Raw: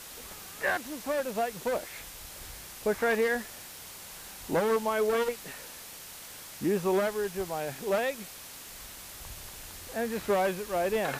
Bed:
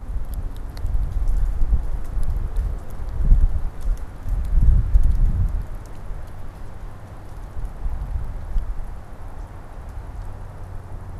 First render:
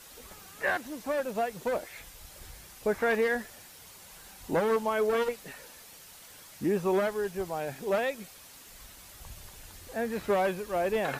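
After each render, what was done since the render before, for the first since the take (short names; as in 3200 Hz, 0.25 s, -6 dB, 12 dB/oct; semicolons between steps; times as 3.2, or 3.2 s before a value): denoiser 7 dB, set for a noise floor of -46 dBFS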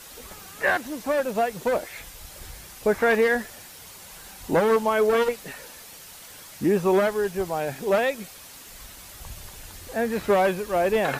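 gain +6.5 dB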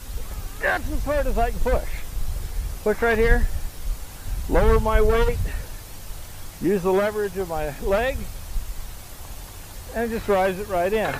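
add bed -5 dB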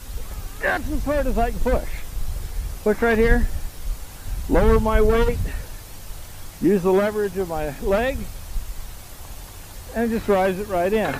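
dynamic EQ 250 Hz, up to +7 dB, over -39 dBFS, Q 1.5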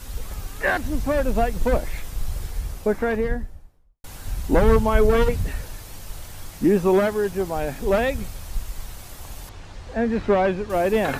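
2.42–4.04 studio fade out; 9.49–10.7 air absorption 120 m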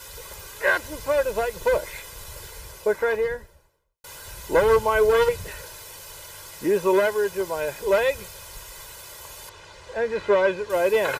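HPF 510 Hz 6 dB/oct; comb 2 ms, depth 82%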